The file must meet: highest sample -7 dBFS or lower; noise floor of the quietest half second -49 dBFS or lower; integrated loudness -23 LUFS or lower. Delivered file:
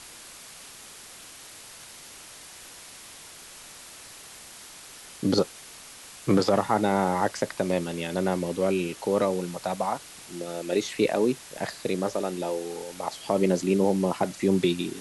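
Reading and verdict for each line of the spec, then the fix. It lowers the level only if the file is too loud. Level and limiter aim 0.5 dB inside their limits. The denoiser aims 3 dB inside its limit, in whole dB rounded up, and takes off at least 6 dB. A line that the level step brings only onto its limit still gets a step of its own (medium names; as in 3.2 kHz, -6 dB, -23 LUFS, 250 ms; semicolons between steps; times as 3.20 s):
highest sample -10.0 dBFS: pass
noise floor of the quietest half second -46 dBFS: fail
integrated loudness -27.0 LUFS: pass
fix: noise reduction 6 dB, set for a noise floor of -46 dBFS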